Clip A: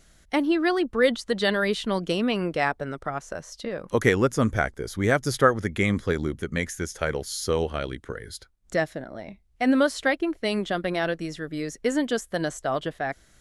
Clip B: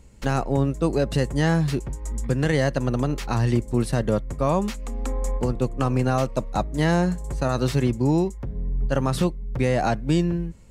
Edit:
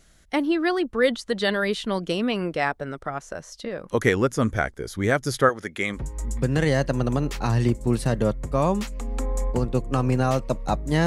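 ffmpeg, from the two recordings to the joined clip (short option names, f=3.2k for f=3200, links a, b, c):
-filter_complex "[0:a]asettb=1/sr,asplit=3[a][b][c];[a]atrim=end=5.494[d];[b]atrim=start=5.49:end=6.02,asetpts=PTS-STARTPTS,afade=t=in:d=0.004:c=qsin,afade=t=out:st=0.526:d=0.004:c=qsin,highpass=f=460:p=1[e];[c]atrim=start=6.016[f];[d][e]acrossfade=d=0.004:c1=hsin:c2=qsin[g];[g][f]acrossfade=d=0.004:c1=qsin:c2=hsin,apad=whole_dur=11.06,atrim=end=11.06,atrim=end=6.02,asetpts=PTS-STARTPTS[h];[1:a]atrim=start=1.79:end=6.93,asetpts=PTS-STARTPTS[i];[h][i]acrossfade=d=0.1:c1=tri:c2=tri"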